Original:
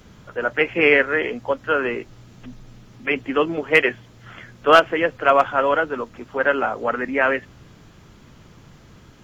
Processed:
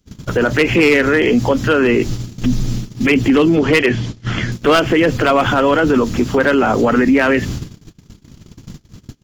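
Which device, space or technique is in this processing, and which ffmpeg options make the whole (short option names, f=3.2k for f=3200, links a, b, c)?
loud club master: -filter_complex "[0:a]asettb=1/sr,asplit=3[a][b][c];[a]atrim=end=3.564[d];[b]atrim=start=3.56:end=4.52,asetpts=PTS-STARTPTS,afade=t=in:d=0.004:c=qsin,afade=t=out:st=0.956:d=0.004:c=qsin,lowpass=5.7k[e];[c]atrim=start=4.516[f];[d][e]acrossfade=d=0.004:c1=hsin:c2=qsin[g];[g][f]acrossfade=d=0.004:c1=qsin:c2=hsin,agate=range=-39dB:threshold=-43dB:ratio=16:detection=peak,firequalizer=gain_entry='entry(280,0);entry(550,-10);entry(1400,-11);entry(4700,1)':delay=0.05:min_phase=1,acompressor=threshold=-25dB:ratio=2.5,asoftclip=type=hard:threshold=-21.5dB,alimiter=level_in=30.5dB:limit=-1dB:release=50:level=0:latency=1,volume=-5dB"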